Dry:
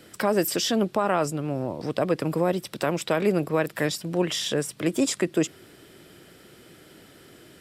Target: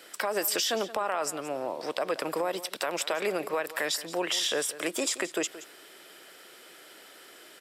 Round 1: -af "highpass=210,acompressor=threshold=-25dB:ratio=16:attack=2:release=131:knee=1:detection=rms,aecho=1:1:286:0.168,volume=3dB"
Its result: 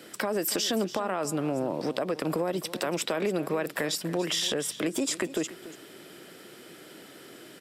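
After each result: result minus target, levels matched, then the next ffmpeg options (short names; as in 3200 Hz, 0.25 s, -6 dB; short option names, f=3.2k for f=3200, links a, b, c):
echo 0.111 s late; 250 Hz band +6.5 dB
-af "highpass=210,acompressor=threshold=-25dB:ratio=16:attack=2:release=131:knee=1:detection=rms,aecho=1:1:175:0.168,volume=3dB"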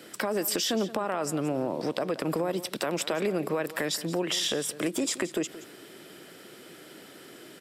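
250 Hz band +6.5 dB
-af "highpass=600,acompressor=threshold=-25dB:ratio=16:attack=2:release=131:knee=1:detection=rms,aecho=1:1:175:0.168,volume=3dB"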